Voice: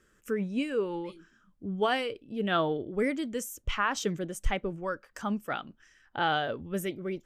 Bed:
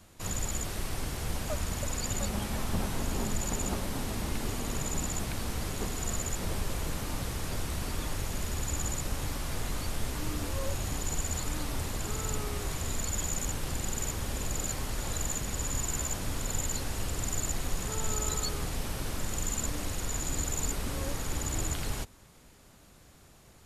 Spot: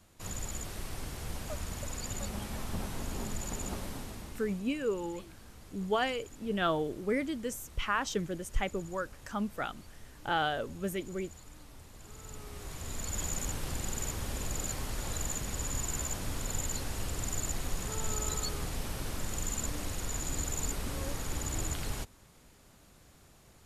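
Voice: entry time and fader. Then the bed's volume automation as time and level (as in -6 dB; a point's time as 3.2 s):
4.10 s, -2.5 dB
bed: 3.87 s -5.5 dB
4.73 s -18.5 dB
11.88 s -18.5 dB
13.22 s -2.5 dB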